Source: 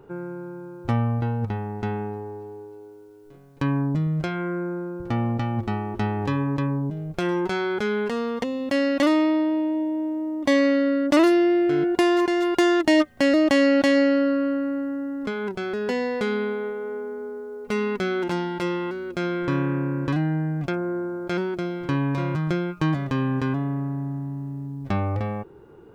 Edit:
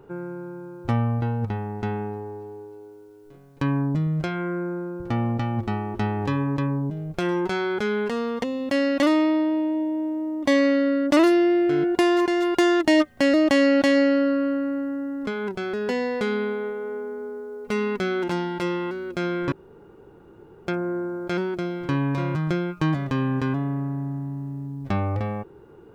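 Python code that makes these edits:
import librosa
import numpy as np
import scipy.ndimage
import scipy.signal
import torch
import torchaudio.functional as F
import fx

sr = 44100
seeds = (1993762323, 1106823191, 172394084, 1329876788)

y = fx.edit(x, sr, fx.room_tone_fill(start_s=19.52, length_s=1.15), tone=tone)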